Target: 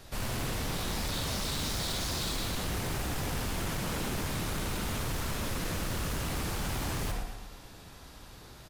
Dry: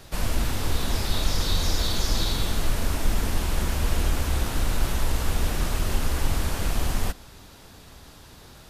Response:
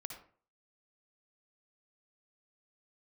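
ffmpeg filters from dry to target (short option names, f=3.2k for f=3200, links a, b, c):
-filter_complex "[0:a]asettb=1/sr,asplit=3[a][b][c];[a]atrim=end=4.334[d];[b]atrim=start=4.33:end=6.26,asetpts=PTS-STARTPTS,afade=t=in:d=0.004:c=qsin,afade=t=out:st=1.926:d=0.004:c=qsin,asuperstop=centerf=790:order=20:qfactor=5.9[e];[c]atrim=start=6.256[f];[d][e]acrossfade=d=0.004:c1=hsin:c2=qsin[g];[g][f]acrossfade=d=0.004:c1=qsin:c2=hsin,aecho=1:1:116|232|348|464|580|696:0.299|0.152|0.0776|0.0396|0.0202|0.0103[h];[1:a]atrim=start_sample=2205[i];[h][i]afir=irnorm=-1:irlink=0,aeval=exprs='0.0398*(abs(mod(val(0)/0.0398+3,4)-2)-1)':c=same"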